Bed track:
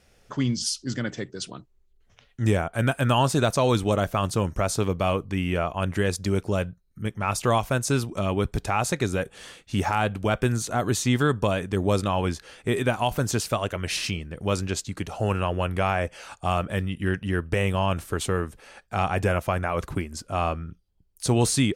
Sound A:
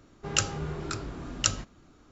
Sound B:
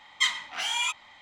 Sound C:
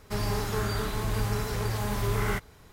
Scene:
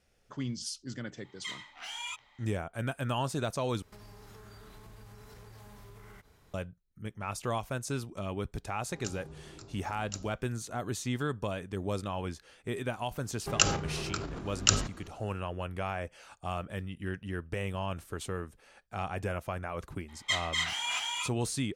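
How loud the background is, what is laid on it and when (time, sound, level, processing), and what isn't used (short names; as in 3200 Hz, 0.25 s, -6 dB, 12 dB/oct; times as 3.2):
bed track -11 dB
1.24 add B -11.5 dB + limiter -16.5 dBFS
3.82 replace with C -9 dB + compressor 16:1, threshold -38 dBFS
8.68 add A -14.5 dB + band shelf 2000 Hz -8 dB
13.23 add A -5 dB + transient shaper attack +7 dB, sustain +12 dB
20.08 add B -6 dB + tapped delay 0.243/0.288 s -4/-3 dB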